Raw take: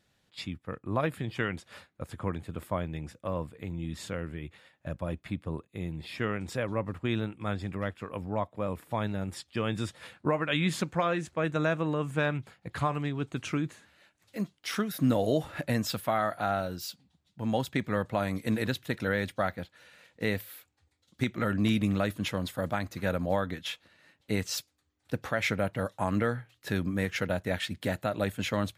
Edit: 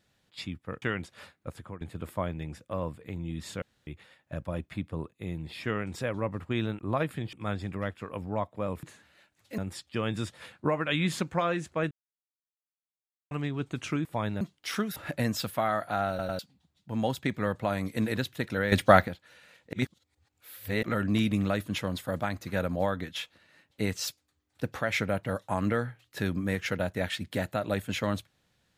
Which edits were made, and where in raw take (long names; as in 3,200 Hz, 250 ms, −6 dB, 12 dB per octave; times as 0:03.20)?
0:00.82–0:01.36: move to 0:07.33
0:02.02–0:02.35: fade out, to −18.5 dB
0:04.16–0:04.41: fill with room tone
0:08.83–0:09.19: swap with 0:13.66–0:14.41
0:11.52–0:12.92: silence
0:14.96–0:15.46: remove
0:16.59: stutter in place 0.10 s, 3 plays
0:19.22–0:19.58: clip gain +11.5 dB
0:20.23–0:21.33: reverse